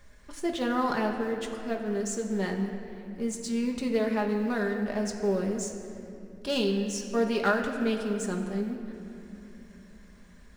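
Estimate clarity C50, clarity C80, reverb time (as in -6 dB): 5.5 dB, 6.5 dB, 3.0 s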